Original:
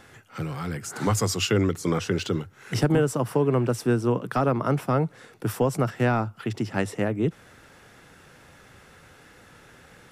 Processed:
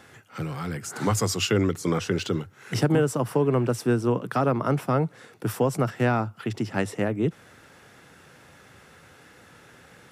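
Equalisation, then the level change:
high-pass filter 76 Hz
0.0 dB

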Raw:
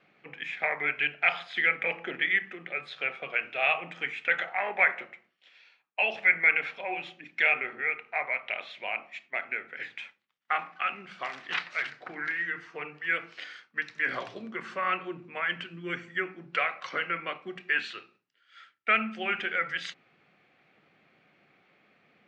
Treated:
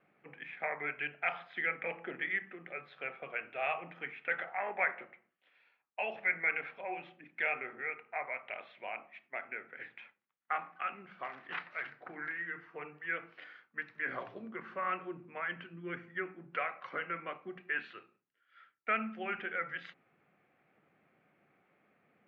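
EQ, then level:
low-pass filter 1,800 Hz 12 dB per octave
−5.0 dB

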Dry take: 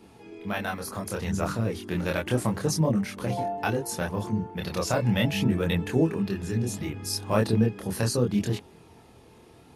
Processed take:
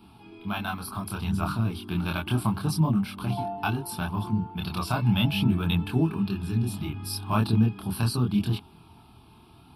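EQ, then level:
phaser with its sweep stopped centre 1,900 Hz, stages 6
+3.0 dB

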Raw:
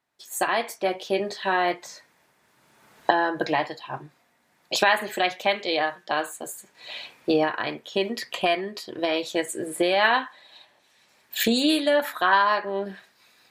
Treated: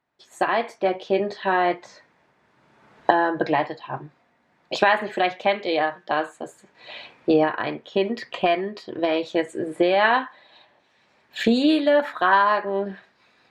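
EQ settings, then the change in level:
head-to-tape spacing loss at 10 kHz 23 dB
+4.5 dB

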